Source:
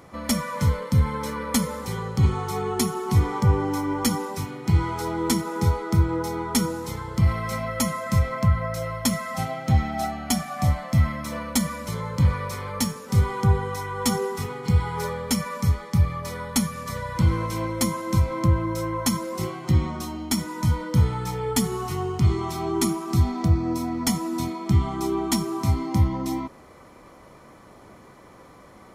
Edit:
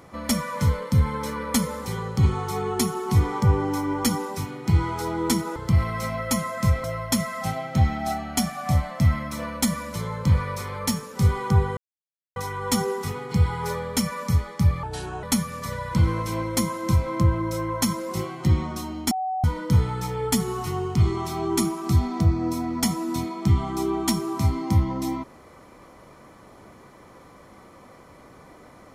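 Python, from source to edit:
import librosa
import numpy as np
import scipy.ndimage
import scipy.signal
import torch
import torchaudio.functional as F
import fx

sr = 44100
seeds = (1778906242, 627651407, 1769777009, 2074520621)

y = fx.edit(x, sr, fx.cut(start_s=5.56, length_s=1.49),
    fx.cut(start_s=8.33, length_s=0.44),
    fx.insert_silence(at_s=13.7, length_s=0.59),
    fx.speed_span(start_s=16.17, length_s=0.3, speed=0.75),
    fx.bleep(start_s=20.35, length_s=0.33, hz=751.0, db=-24.0), tone=tone)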